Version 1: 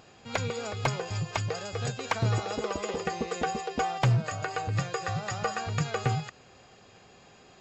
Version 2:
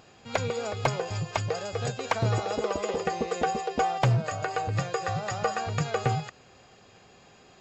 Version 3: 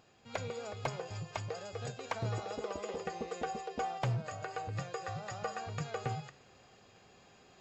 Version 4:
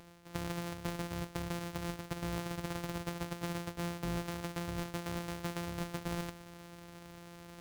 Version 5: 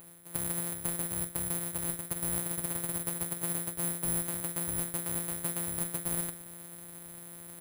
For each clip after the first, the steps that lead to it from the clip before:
dynamic EQ 590 Hz, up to +5 dB, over -43 dBFS, Q 1.1
reverse; upward compressor, threshold -43 dBFS; reverse; flange 0.58 Hz, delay 8.4 ms, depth 3.5 ms, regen -88%; gain -6 dB
sample sorter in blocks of 256 samples; reverse; compressor 5:1, threshold -46 dBFS, peak gain reduction 14.5 dB; reverse; gain +9.5 dB
doubler 47 ms -13 dB; careless resampling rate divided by 4×, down filtered, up zero stuff; gain -2 dB

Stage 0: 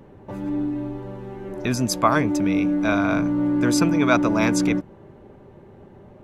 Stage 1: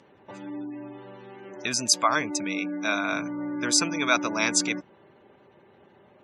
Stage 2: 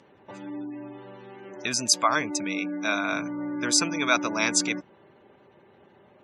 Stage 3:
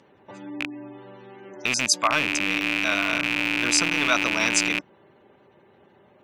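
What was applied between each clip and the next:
weighting filter ITU-R 468; spectral gate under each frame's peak -25 dB strong; low shelf 440 Hz +8 dB; gain -5.5 dB
nothing audible
rattling part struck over -38 dBFS, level -11 dBFS

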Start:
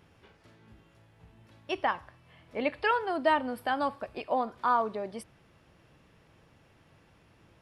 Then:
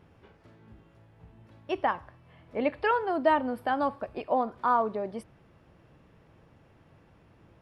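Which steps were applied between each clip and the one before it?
high shelf 2000 Hz -11 dB; gain +3.5 dB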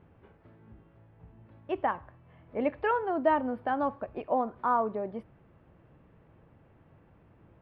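air absorption 440 m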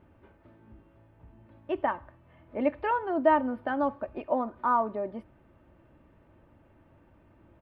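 comb 3.3 ms, depth 46%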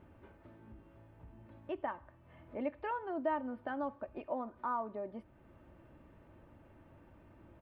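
compressor 1.5:1, threshold -53 dBFS, peak gain reduction 13 dB

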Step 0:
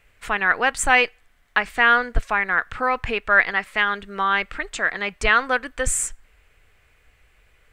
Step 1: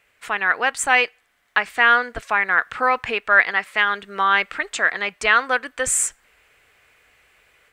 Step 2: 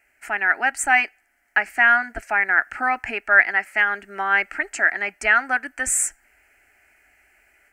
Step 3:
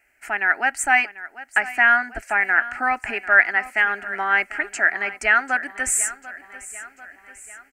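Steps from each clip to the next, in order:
HPF 380 Hz 6 dB/oct; AGC gain up to 5 dB
fixed phaser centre 730 Hz, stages 8; gain +1 dB
feedback echo 0.743 s, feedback 54%, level -16.5 dB

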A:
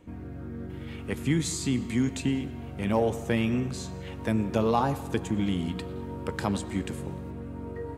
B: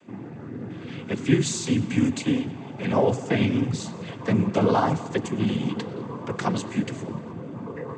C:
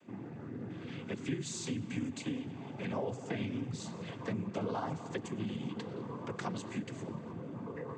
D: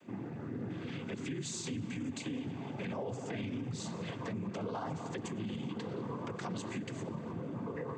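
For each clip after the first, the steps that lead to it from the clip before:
noise vocoder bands 16; gain +4.5 dB
compressor 2.5:1, threshold -30 dBFS, peak gain reduction 12 dB; gain -7 dB
limiter -33.5 dBFS, peak gain reduction 10 dB; gain +3 dB

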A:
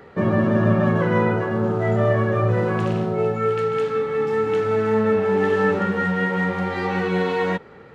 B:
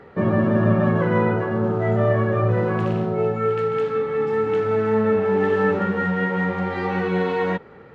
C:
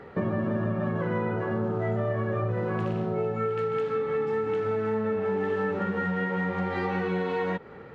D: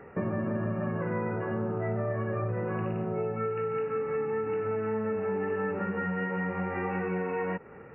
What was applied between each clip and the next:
LPF 2800 Hz 6 dB/oct
compressor, threshold -25 dBFS, peak gain reduction 12 dB
brick-wall FIR low-pass 2900 Hz; gain -3 dB

